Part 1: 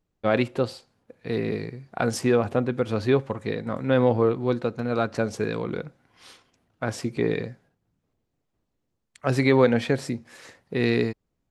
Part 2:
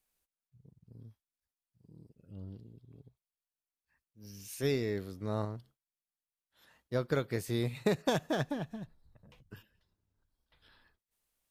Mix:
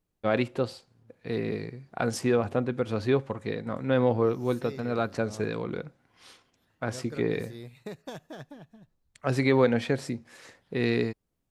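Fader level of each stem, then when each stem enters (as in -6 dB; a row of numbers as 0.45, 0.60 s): -3.5, -10.5 dB; 0.00, 0.00 s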